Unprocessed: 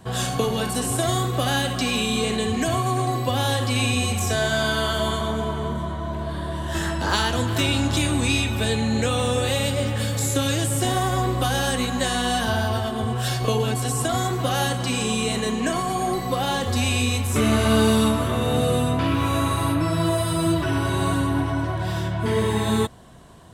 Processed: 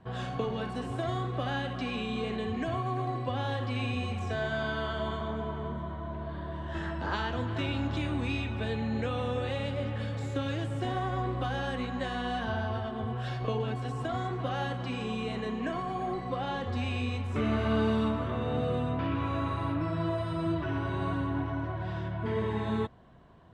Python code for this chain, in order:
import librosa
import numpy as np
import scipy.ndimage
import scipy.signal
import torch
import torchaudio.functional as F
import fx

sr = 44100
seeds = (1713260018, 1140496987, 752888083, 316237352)

y = scipy.signal.sosfilt(scipy.signal.butter(2, 2500.0, 'lowpass', fs=sr, output='sos'), x)
y = y * 10.0 ** (-9.0 / 20.0)